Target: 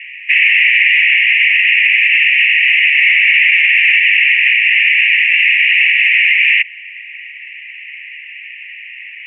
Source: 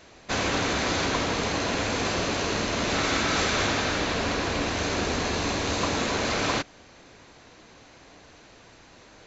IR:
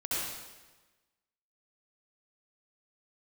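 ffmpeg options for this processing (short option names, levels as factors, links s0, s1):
-af "asuperpass=centerf=2300:order=12:qfactor=2.3,aemphasis=mode=production:type=cd,alimiter=level_in=29.9:limit=0.891:release=50:level=0:latency=1,volume=0.891"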